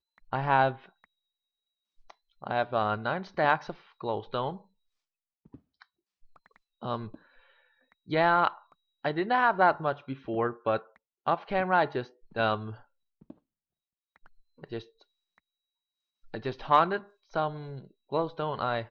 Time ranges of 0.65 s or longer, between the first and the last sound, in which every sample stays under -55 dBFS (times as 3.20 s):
1.04–1.99 s
4.65–5.45 s
13.38–14.16 s
15.38–16.24 s